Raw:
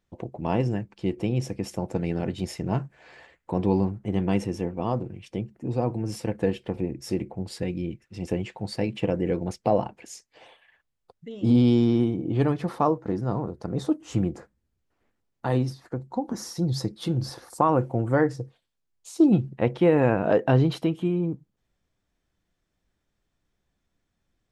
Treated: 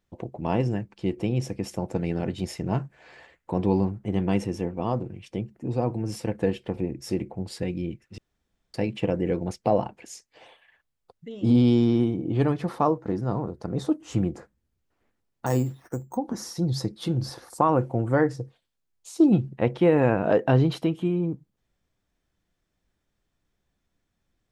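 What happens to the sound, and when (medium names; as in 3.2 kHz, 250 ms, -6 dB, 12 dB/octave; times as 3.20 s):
8.18–8.74 s: room tone
15.46–16.17 s: careless resampling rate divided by 6×, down filtered, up hold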